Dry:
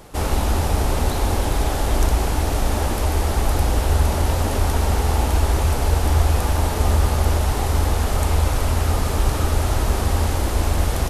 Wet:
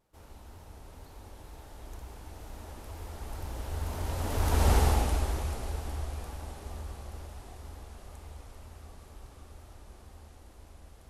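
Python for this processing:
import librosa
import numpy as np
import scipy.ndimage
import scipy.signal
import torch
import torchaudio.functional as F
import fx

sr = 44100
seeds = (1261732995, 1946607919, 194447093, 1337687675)

y = fx.doppler_pass(x, sr, speed_mps=16, closest_m=3.3, pass_at_s=4.74)
y = fx.vibrato(y, sr, rate_hz=2.1, depth_cents=42.0)
y = F.gain(torch.from_numpy(y), -3.5).numpy()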